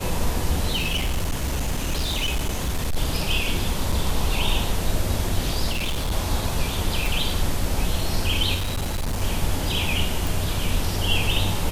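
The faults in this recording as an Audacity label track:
0.750000	2.970000	clipped -19.5 dBFS
3.920000	3.920000	dropout 4.9 ms
5.710000	6.120000	clipped -21 dBFS
7.060000	7.060000	pop
8.540000	9.230000	clipped -21.5 dBFS
10.270000	10.270000	pop

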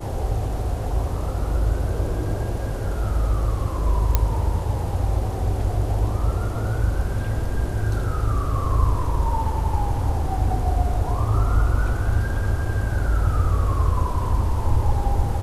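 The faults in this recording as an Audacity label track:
4.150000	4.150000	pop -4 dBFS

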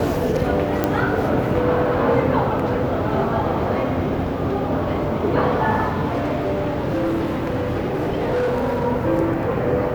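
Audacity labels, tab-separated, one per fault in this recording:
0.840000	0.840000	pop -6 dBFS
6.070000	8.860000	clipped -17.5 dBFS

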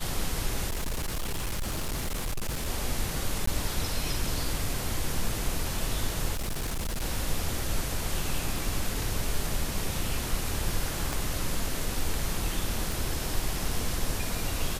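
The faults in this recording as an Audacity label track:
0.690000	2.680000	clipped -27 dBFS
3.460000	3.470000	dropout 14 ms
6.330000	7.040000	clipped -27.5 dBFS
11.130000	11.130000	pop
12.920000	12.920000	pop

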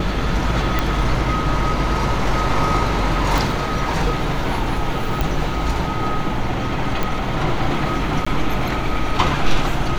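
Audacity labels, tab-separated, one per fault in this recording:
0.790000	0.790000	pop -5 dBFS
3.380000	3.380000	pop
5.210000	5.210000	pop
7.030000	7.030000	pop
8.250000	8.270000	dropout 15 ms

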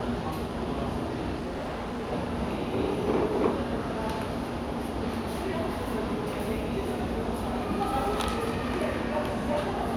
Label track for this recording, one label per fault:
1.380000	2.130000	clipped -30.5 dBFS

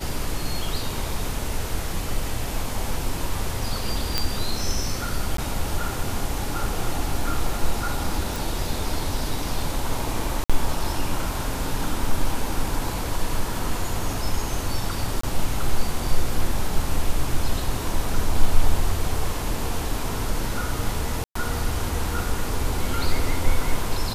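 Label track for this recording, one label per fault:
4.180000	4.180000	pop -5 dBFS
5.370000	5.380000	dropout 13 ms
8.360000	8.360000	pop
10.440000	10.500000	dropout 56 ms
15.210000	15.230000	dropout 24 ms
21.240000	21.350000	dropout 114 ms

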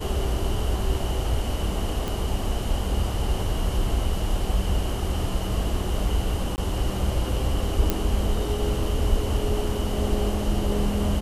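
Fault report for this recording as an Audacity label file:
2.080000	2.080000	pop
6.560000	6.580000	dropout 19 ms
7.900000	7.900000	pop

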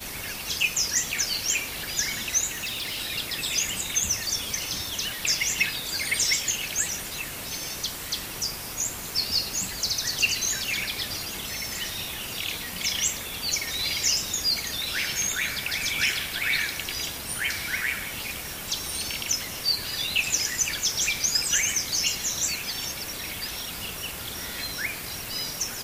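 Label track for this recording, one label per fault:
2.510000	2.970000	clipped -27.5 dBFS

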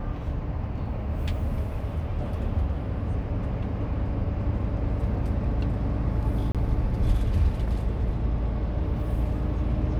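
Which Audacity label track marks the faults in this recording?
6.520000	6.550000	dropout 27 ms

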